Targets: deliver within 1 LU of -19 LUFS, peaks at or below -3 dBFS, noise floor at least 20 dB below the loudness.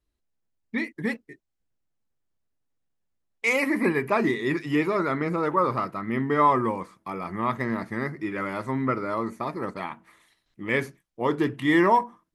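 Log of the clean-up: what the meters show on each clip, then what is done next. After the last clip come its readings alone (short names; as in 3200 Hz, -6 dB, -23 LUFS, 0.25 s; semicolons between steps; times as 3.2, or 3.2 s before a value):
loudness -26.0 LUFS; peak -8.5 dBFS; loudness target -19.0 LUFS
-> gain +7 dB; limiter -3 dBFS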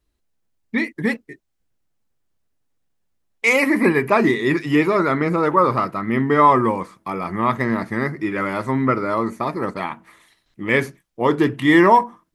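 loudness -19.0 LUFS; peak -3.0 dBFS; noise floor -72 dBFS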